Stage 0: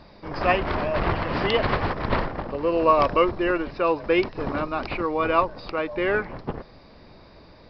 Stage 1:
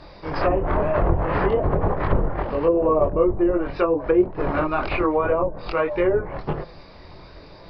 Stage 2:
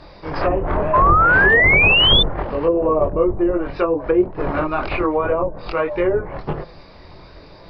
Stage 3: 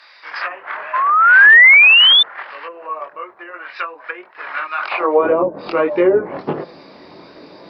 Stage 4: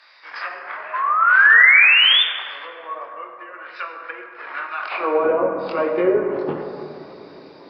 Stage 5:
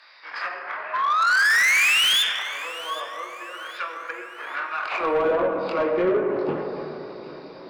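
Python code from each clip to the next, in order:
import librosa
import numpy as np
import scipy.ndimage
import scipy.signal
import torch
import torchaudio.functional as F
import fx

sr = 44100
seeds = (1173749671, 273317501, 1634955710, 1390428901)

y1 = fx.chorus_voices(x, sr, voices=4, hz=0.47, base_ms=23, depth_ms=3.0, mix_pct=45)
y1 = fx.peak_eq(y1, sr, hz=230.0, db=-10.0, octaves=0.34)
y1 = fx.env_lowpass_down(y1, sr, base_hz=510.0, full_db=-21.5)
y1 = F.gain(torch.from_numpy(y1), 8.5).numpy()
y2 = fx.spec_paint(y1, sr, seeds[0], shape='rise', start_s=0.93, length_s=1.3, low_hz=1000.0, high_hz=3600.0, level_db=-15.0)
y2 = F.gain(torch.from_numpy(y2), 1.5).numpy()
y3 = fx.filter_sweep_highpass(y2, sr, from_hz=1700.0, to_hz=250.0, start_s=4.77, end_s=5.3, q=1.8)
y3 = F.gain(torch.from_numpy(y3), 2.5).numpy()
y4 = fx.rev_plate(y3, sr, seeds[1], rt60_s=2.7, hf_ratio=0.4, predelay_ms=0, drr_db=3.0)
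y4 = F.gain(torch.from_numpy(y4), -6.0).numpy()
y5 = fx.self_delay(y4, sr, depth_ms=0.066)
y5 = 10.0 ** (-16.0 / 20.0) * np.tanh(y5 / 10.0 ** (-16.0 / 20.0))
y5 = fx.echo_feedback(y5, sr, ms=775, feedback_pct=42, wet_db=-17.0)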